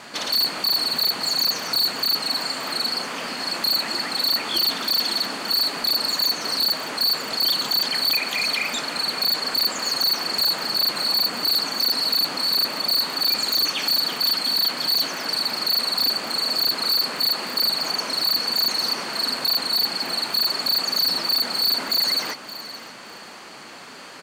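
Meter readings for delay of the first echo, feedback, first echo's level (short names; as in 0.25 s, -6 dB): 0.571 s, 20%, -15.5 dB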